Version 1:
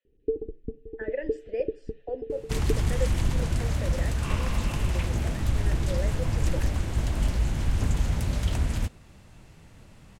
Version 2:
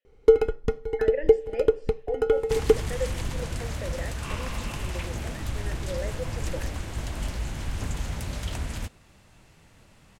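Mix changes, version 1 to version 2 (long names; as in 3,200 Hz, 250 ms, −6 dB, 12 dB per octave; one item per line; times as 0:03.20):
first sound: remove transistor ladder low-pass 370 Hz, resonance 50%
second sound: add low-shelf EQ 410 Hz −6.5 dB
reverb: on, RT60 0.75 s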